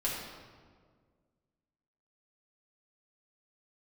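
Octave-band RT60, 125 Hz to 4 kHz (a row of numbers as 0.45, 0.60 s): 2.2, 2.2, 1.9, 1.6, 1.3, 1.1 s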